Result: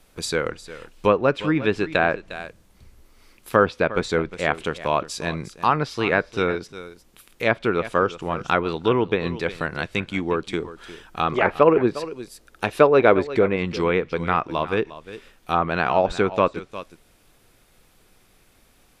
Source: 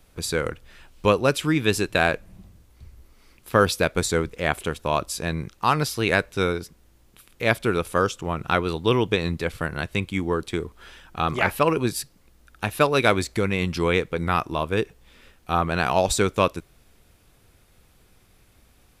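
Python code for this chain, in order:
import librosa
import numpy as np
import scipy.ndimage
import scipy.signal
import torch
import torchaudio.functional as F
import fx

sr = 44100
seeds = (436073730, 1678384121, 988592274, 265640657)

y = fx.peak_eq(x, sr, hz=440.0, db=6.5, octaves=1.0, at=(11.32, 13.56))
y = y + 10.0 ** (-15.5 / 20.0) * np.pad(y, (int(355 * sr / 1000.0), 0))[:len(y)]
y = fx.env_lowpass_down(y, sr, base_hz=1900.0, full_db=-16.5)
y = fx.peak_eq(y, sr, hz=70.0, db=-9.0, octaves=2.0)
y = y * librosa.db_to_amplitude(2.0)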